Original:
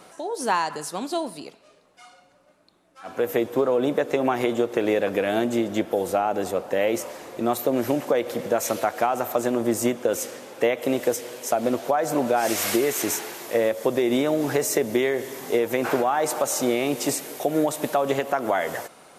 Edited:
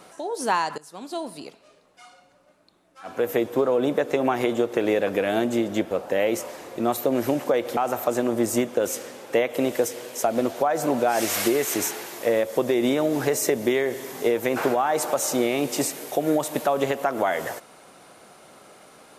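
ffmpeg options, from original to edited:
-filter_complex "[0:a]asplit=4[s0][s1][s2][s3];[s0]atrim=end=0.78,asetpts=PTS-STARTPTS,afade=t=out:st=0.776:d=0.004:c=hsin:silence=0.105925[s4];[s1]atrim=start=0.78:end=5.912,asetpts=PTS-STARTPTS,afade=t=in:d=0.68:silence=0.105925[s5];[s2]atrim=start=6.518:end=8.382[s6];[s3]atrim=start=9.048[s7];[s4][s5]concat=n=2:v=0:a=1[s8];[s8][s6]acrossfade=d=0.004:c1=hsin:c2=hsin[s9];[s9][s7]acrossfade=d=0.004:c1=hsin:c2=hsin"

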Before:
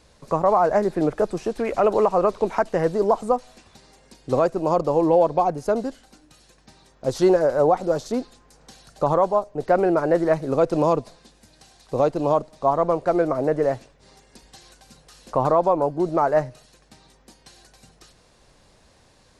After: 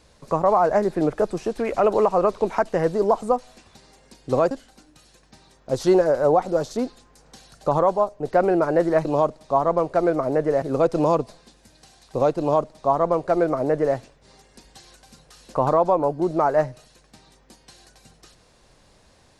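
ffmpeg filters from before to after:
-filter_complex "[0:a]asplit=4[s0][s1][s2][s3];[s0]atrim=end=4.512[s4];[s1]atrim=start=5.858:end=10.402[s5];[s2]atrim=start=12.168:end=13.742[s6];[s3]atrim=start=10.398[s7];[s4][s5]acrossfade=d=0.004:c1=hsin:c2=hsin[s8];[s8][s6]acrossfade=d=0.004:c1=hsin:c2=hsin[s9];[s9][s7]acrossfade=d=0.004:c1=hsin:c2=hsin"

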